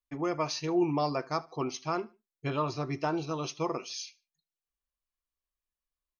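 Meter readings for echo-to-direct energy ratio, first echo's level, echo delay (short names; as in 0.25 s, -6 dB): -22.5 dB, -23.0 dB, 75 ms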